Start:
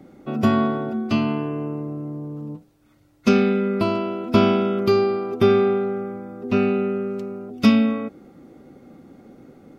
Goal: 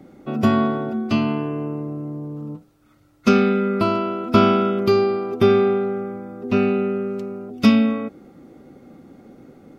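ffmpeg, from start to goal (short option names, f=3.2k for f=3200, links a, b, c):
-filter_complex "[0:a]asettb=1/sr,asplit=3[a][b][c];[a]atrim=end=2.404[d];[b]atrim=start=2.4:end=4.71,asetpts=PTS-STARTPTS,afade=t=in:d=0.004:c=qsin,afade=t=out:st=2.306:d=0.004:c=qsin,equalizer=f=1.3k:w=6.6:g=8[e];[c]atrim=start=4.706[f];[d][e]acrossfade=d=0.004:c1=hsin:c2=qsin[g];[g][f]acrossfade=d=0.004:c1=qsin:c2=hsin,volume=1dB"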